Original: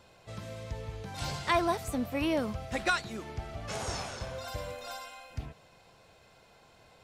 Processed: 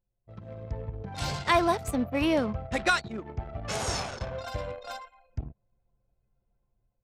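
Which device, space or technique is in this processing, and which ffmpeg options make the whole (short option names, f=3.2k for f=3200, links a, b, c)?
voice memo with heavy noise removal: -filter_complex "[0:a]asettb=1/sr,asplit=3[a][b][c];[a]atrim=end=3.434[d];[b]atrim=start=3.43:end=4,asetpts=PTS-STARTPTS,afade=t=in:d=0.004:c=qsin,afade=t=out:st=0.566:d=0.004:c=qsin,highshelf=f=3.2k:g=2.5[e];[c]atrim=start=3.996[f];[d][e]acrossfade=d=0.004:c1=hsin:c2=qsin[g];[g][f]acrossfade=d=0.004:c1=qsin:c2=hsin,anlmdn=0.398,dynaudnorm=f=190:g=5:m=10dB,volume=-5.5dB"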